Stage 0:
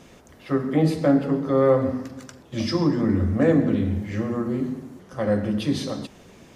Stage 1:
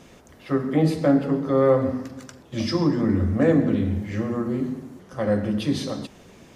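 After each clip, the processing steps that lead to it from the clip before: nothing audible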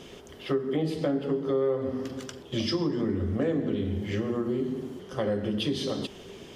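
thirty-one-band EQ 400 Hz +11 dB, 3150 Hz +12 dB, 5000 Hz +3 dB; compressor 4:1, threshold -26 dBFS, peak gain reduction 15 dB

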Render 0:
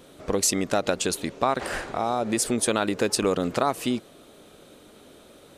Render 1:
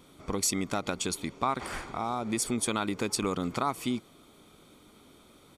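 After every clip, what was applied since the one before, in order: comb 0.9 ms, depth 50%; gain -6 dB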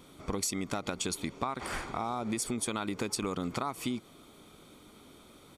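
compressor, threshold -31 dBFS, peak gain reduction 8.5 dB; gain +1.5 dB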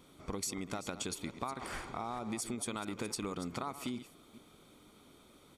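reverse delay 0.219 s, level -12 dB; gain -5.5 dB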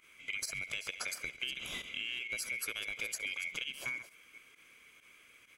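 band-swap scrambler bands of 2000 Hz; pump 132 bpm, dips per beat 1, -15 dB, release 61 ms; thinning echo 68 ms, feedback 60%, level -21 dB

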